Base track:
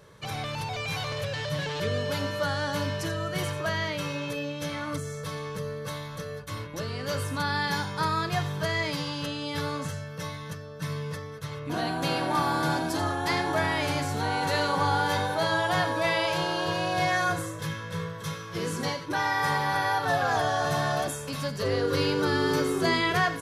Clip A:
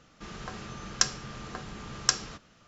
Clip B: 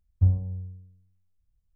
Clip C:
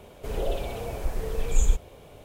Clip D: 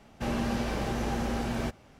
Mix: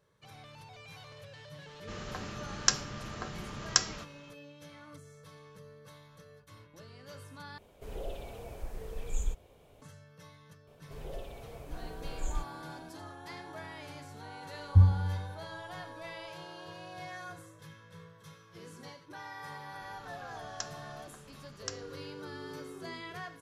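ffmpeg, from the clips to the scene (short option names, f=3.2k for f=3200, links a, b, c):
-filter_complex "[1:a]asplit=2[a][b];[3:a]asplit=2[c][d];[0:a]volume=-18.5dB[e];[2:a]tiltshelf=f=970:g=6[f];[e]asplit=2[g][h];[g]atrim=end=7.584[i];[c]atrim=end=2.24,asetpts=PTS-STARTPTS,volume=-11.5dB[j];[h]atrim=start=9.816[k];[a]atrim=end=2.67,asetpts=PTS-STARTPTS,volume=-1dB,afade=t=in:d=0.004:c=hsin,afade=t=out:st=2.666:d=0.004:c=hsin,adelay=1670[l];[d]atrim=end=2.24,asetpts=PTS-STARTPTS,volume=-14dB,afade=t=in:d=0.004:c=hsin,afade=t=out:st=2.236:d=0.004:c=hsin,adelay=10670[m];[f]atrim=end=1.75,asetpts=PTS-STARTPTS,volume=-5dB,afade=t=in:d=0.004:c=hsin,afade=t=out:st=1.746:d=0.004:c=hsin,adelay=14540[n];[b]atrim=end=2.67,asetpts=PTS-STARTPTS,volume=-15.5dB,afade=t=in:d=0.004:c=hsin,afade=t=out:st=2.666:d=0.004:c=hsin,adelay=19590[o];[i][j]acrossfade=d=0.004:c1=hsin:c2=hsin[p];[p][k]acrossfade=d=0.004:c1=hsin:c2=hsin[q];[q][l][m][n][o]amix=inputs=5:normalize=0"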